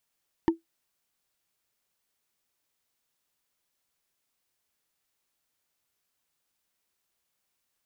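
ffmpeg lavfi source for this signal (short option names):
-f lavfi -i "aevalsrc='0.2*pow(10,-3*t/0.14)*sin(2*PI*330*t)+0.0891*pow(10,-3*t/0.041)*sin(2*PI*909.8*t)+0.0398*pow(10,-3*t/0.018)*sin(2*PI*1783.3*t)+0.0178*pow(10,-3*t/0.01)*sin(2*PI*2947.9*t)+0.00794*pow(10,-3*t/0.006)*sin(2*PI*4402.2*t)':d=0.45:s=44100"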